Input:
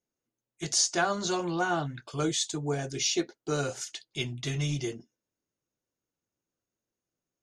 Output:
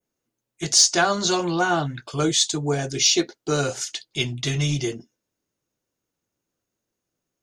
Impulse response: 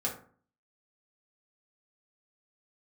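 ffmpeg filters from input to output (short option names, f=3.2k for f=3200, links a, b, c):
-af "adynamicequalizer=threshold=0.0112:dfrequency=4500:dqfactor=0.97:tfrequency=4500:tqfactor=0.97:attack=5:release=100:ratio=0.375:range=2.5:mode=boostabove:tftype=bell,acontrast=80"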